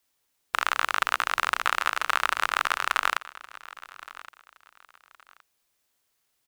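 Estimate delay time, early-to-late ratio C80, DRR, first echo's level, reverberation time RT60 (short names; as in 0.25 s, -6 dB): 1.118 s, none, none, -18.5 dB, none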